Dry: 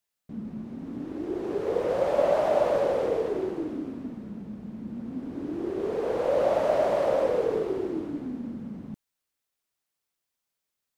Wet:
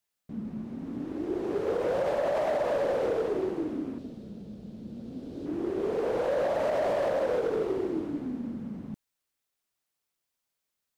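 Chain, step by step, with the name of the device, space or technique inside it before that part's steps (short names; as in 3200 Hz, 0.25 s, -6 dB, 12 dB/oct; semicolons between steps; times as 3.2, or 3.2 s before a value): 3.98–5.46 graphic EQ 250/500/1000/2000/4000 Hz -6/+4/-10/-8/+7 dB; limiter into clipper (limiter -18.5 dBFS, peak gain reduction 7.5 dB; hard clip -23 dBFS, distortion -17 dB)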